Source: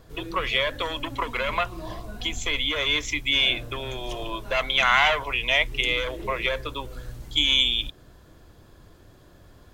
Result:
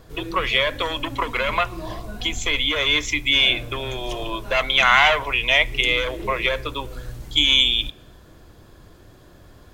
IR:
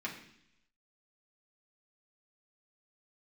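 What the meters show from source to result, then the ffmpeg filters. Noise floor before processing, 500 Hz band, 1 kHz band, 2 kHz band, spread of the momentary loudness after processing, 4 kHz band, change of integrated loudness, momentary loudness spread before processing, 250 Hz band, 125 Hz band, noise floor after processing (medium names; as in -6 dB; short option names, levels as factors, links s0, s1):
-53 dBFS, +4.0 dB, +4.0 dB, +4.5 dB, 14 LU, +4.0 dB, +4.5 dB, 14 LU, +4.5 dB, +4.0 dB, -49 dBFS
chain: -filter_complex "[0:a]asplit=2[s0][s1];[1:a]atrim=start_sample=2205[s2];[s1][s2]afir=irnorm=-1:irlink=0,volume=0.112[s3];[s0][s3]amix=inputs=2:normalize=0,volume=1.5"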